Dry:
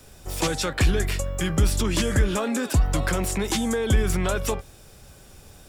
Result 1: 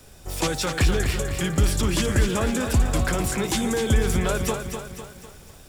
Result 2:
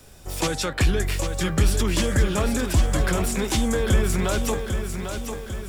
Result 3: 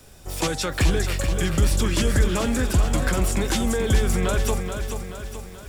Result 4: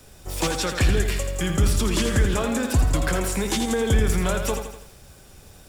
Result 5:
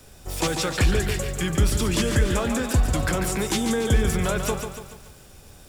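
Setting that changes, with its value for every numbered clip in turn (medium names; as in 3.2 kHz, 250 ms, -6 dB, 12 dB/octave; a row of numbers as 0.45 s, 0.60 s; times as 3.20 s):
bit-crushed delay, time: 251 ms, 798 ms, 431 ms, 83 ms, 143 ms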